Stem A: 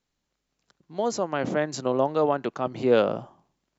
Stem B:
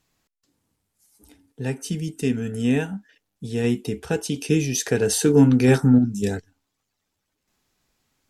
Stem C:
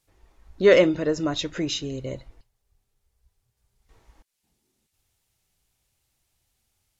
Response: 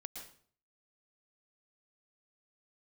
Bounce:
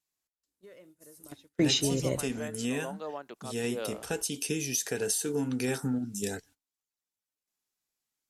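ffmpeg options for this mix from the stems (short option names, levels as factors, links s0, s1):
-filter_complex "[0:a]adelay=850,volume=0.188[s0];[1:a]lowshelf=f=66:g=6.5,volume=0.531,asplit=2[s1][s2];[2:a]highpass=73,acrossover=split=120[s3][s4];[s4]acompressor=threshold=0.0891:ratio=3[s5];[s3][s5]amix=inputs=2:normalize=0,volume=1.33[s6];[s2]apad=whole_len=308387[s7];[s6][s7]sidechaingate=range=0.0224:threshold=0.00251:ratio=16:detection=peak[s8];[s0][s1]amix=inputs=2:normalize=0,aemphasis=mode=production:type=bsi,acompressor=threshold=0.0447:ratio=6,volume=1[s9];[s8][s9]amix=inputs=2:normalize=0,agate=range=0.178:threshold=0.00158:ratio=16:detection=peak,lowpass=12000"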